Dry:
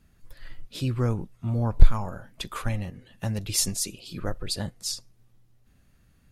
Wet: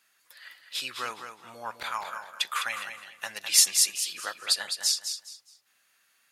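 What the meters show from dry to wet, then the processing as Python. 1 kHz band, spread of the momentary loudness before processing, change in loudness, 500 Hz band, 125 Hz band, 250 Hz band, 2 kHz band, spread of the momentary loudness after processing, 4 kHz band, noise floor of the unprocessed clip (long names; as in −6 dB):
+3.0 dB, 12 LU, +2.5 dB, −9.5 dB, below −35 dB, below −20 dB, +8.5 dB, 19 LU, +7.0 dB, −61 dBFS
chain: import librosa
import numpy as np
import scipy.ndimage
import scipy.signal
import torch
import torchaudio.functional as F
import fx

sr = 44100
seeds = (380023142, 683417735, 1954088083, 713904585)

p1 = scipy.signal.sosfilt(scipy.signal.butter(2, 1300.0, 'highpass', fs=sr, output='sos'), x)
p2 = fx.dynamic_eq(p1, sr, hz=1800.0, q=0.78, threshold_db=-50.0, ratio=4.0, max_db=4)
p3 = p2 + fx.echo_feedback(p2, sr, ms=207, feedback_pct=26, wet_db=-8.0, dry=0)
y = p3 * 10.0 ** (5.5 / 20.0)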